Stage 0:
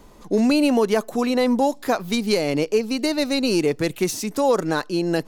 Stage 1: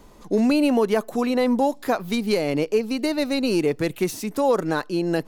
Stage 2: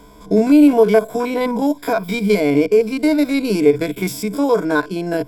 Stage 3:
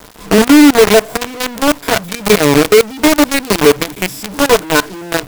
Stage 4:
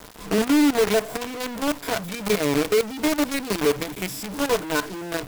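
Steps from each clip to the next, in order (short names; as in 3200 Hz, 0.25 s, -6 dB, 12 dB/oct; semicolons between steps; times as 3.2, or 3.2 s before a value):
dynamic EQ 6100 Hz, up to -6 dB, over -42 dBFS, Q 0.91; gain -1 dB
stepped spectrum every 50 ms; ripple EQ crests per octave 1.7, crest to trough 14 dB; gain +4.5 dB
companded quantiser 2-bit; gain -2 dB
overloaded stage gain 9 dB; gain -5.5 dB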